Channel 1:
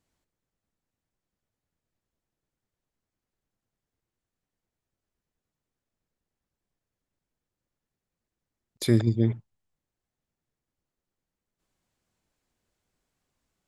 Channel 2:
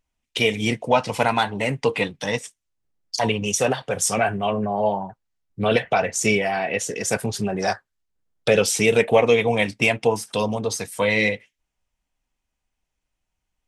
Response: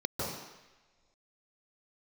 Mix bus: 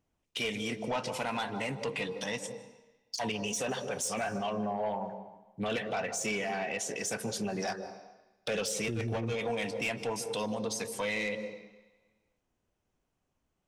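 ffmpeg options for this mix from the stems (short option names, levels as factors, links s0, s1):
-filter_complex "[0:a]lowpass=1200,volume=1.12[s0];[1:a]highpass=170,equalizer=f=4400:w=0.64:g=3,asoftclip=type=tanh:threshold=0.2,volume=0.501,asplit=2[s1][s2];[s2]volume=0.0944[s3];[2:a]atrim=start_sample=2205[s4];[s3][s4]afir=irnorm=-1:irlink=0[s5];[s0][s1][s5]amix=inputs=3:normalize=0,alimiter=level_in=1.26:limit=0.0631:level=0:latency=1:release=75,volume=0.794"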